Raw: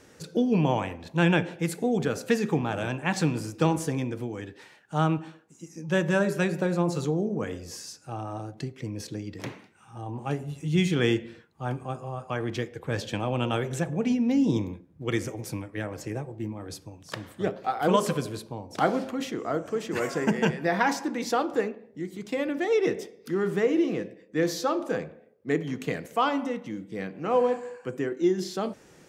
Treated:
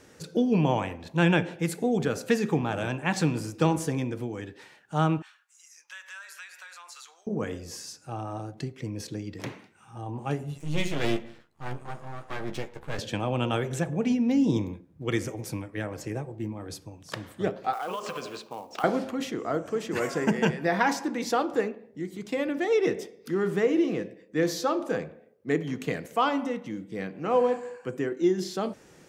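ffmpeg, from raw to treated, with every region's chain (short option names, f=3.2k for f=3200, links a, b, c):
-filter_complex "[0:a]asettb=1/sr,asplit=3[a][b][c];[a]atrim=end=5.224[d];[b]atrim=start=5.22:end=7.27,asetpts=PTS-STARTPTS,afade=t=in:d=0.004:c=qsin,afade=t=out:st=2.046:d=0.004:c=qsin,highpass=f=1.3k:w=0.5412,highpass=f=1.3k:w=1.3066,acompressor=threshold=-43dB:ratio=3:attack=3.2:release=140:knee=1:detection=peak[e];[c]atrim=start=7.266[f];[d][e]acrossfade=d=0.004:c1=hsin:c2=qsin[g];[g][f]acrossfade=d=0.004:c1=qsin:c2=hsin,asettb=1/sr,asplit=3[h][i][j];[h]atrim=end=10.584[k];[i]atrim=start=10.58:end=12.99,asetpts=PTS-STARTPTS,afade=t=in:d=0.004:c=qsin,afade=t=out:st=2.406:d=0.004:c=qsin,aeval=exprs='max(val(0),0)':c=same,asplit=2[l][m];[m]adelay=14,volume=-7.5dB[n];[l][n]amix=inputs=2:normalize=0,atrim=end_sample=106281[o];[j]atrim=start=12.986[p];[k][o]acrossfade=d=0.004:c1=hsin:c2=qsin[q];[q][p]acrossfade=d=0.004:c1=qsin:c2=hsin,asettb=1/sr,asplit=3[r][s][t];[r]atrim=end=17.734[u];[s]atrim=start=17.73:end=18.84,asetpts=PTS-STARTPTS,afade=t=in:d=0.004:c=qsin,afade=t=out:st=1.106:d=0.004:c=qsin,highpass=300,equalizer=f=310:t=q:w=4:g=-5,equalizer=f=770:t=q:w=4:g=4,equalizer=f=1.2k:t=q:w=4:g=9,equalizer=f=2.7k:t=q:w=4:g=8,lowpass=f=7.1k:w=0.5412,lowpass=f=7.1k:w=1.3066,acompressor=threshold=-30dB:ratio=6:attack=3.2:release=140:knee=1:detection=peak,acrusher=bits=5:mode=log:mix=0:aa=0.000001[v];[t]atrim=start=18.836[w];[u][v]acrossfade=d=0.004:c1=hsin:c2=qsin[x];[x][w]acrossfade=d=0.004:c1=qsin:c2=hsin"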